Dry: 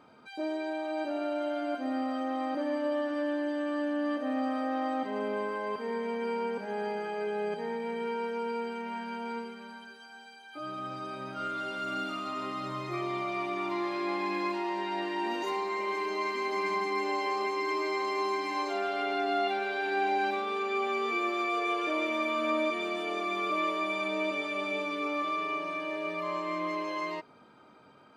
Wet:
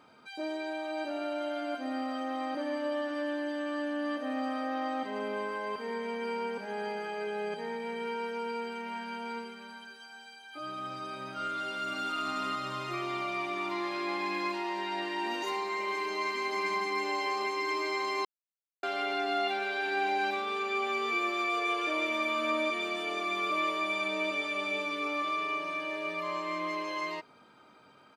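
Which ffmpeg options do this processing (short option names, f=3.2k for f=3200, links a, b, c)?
-filter_complex "[0:a]asettb=1/sr,asplit=3[a][b][c];[a]atrim=end=4.544[d];[b]atrim=start=4.54:end=4.97,asetpts=PTS-STARTPTS,afade=t=in:d=0.004:c=qsin,afade=t=out:st=0.426:d=0.004:c=qsin,equalizer=f=8.6k:t=o:w=0.24:g=-7.5[e];[c]atrim=start=4.966[f];[d][e]acrossfade=d=0.004:c1=hsin:c2=qsin[g];[g][f]acrossfade=d=0.004:c1=qsin:c2=hsin,asplit=2[h][i];[i]afade=t=in:st=11.56:d=0.01,afade=t=out:st=12.18:d=0.01,aecho=0:1:370|740|1110|1480|1850|2220|2590|2960:0.749894|0.412442|0.226843|0.124764|0.06862|0.037741|0.0207576|0.0114167[j];[h][j]amix=inputs=2:normalize=0,asplit=3[k][l][m];[k]atrim=end=18.25,asetpts=PTS-STARTPTS,afade=t=out:st=18.246:d=0.004:c=hsin[n];[l]atrim=start=18.25:end=18.83,asetpts=PTS-STARTPTS,volume=0[o];[m]atrim=start=18.83,asetpts=PTS-STARTPTS,afade=t=in:d=0.004:c=hsin[p];[n][o][p]concat=n=3:v=0:a=1,tiltshelf=f=1.3k:g=-3.5"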